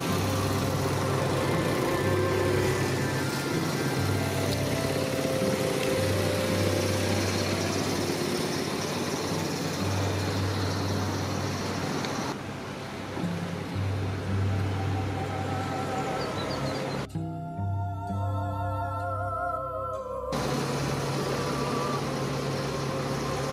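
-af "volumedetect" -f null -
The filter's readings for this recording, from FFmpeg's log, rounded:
mean_volume: -28.4 dB
max_volume: -13.6 dB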